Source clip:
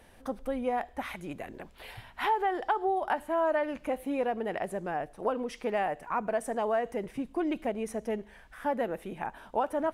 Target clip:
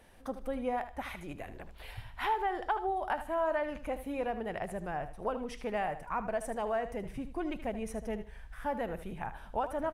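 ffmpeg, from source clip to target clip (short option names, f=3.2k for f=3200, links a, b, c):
-filter_complex "[0:a]asubboost=boost=5.5:cutoff=120,asplit=2[a][b];[b]aecho=0:1:77|154|231:0.251|0.0578|0.0133[c];[a][c]amix=inputs=2:normalize=0,volume=-3dB"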